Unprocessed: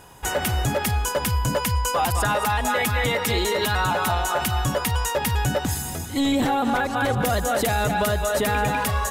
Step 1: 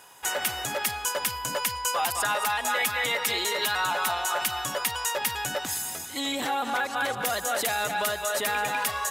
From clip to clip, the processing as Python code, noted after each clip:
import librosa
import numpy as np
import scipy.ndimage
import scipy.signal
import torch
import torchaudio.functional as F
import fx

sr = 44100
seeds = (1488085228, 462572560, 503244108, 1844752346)

y = fx.highpass(x, sr, hz=1200.0, slope=6)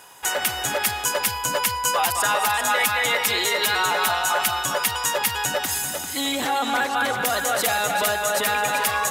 y = x + 10.0 ** (-7.0 / 20.0) * np.pad(x, (int(390 * sr / 1000.0), 0))[:len(x)]
y = y * librosa.db_to_amplitude(4.5)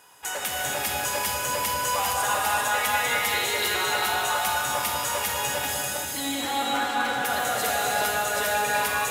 y = fx.rev_gated(x, sr, seeds[0], gate_ms=490, shape='flat', drr_db=-3.0)
y = y * librosa.db_to_amplitude(-8.0)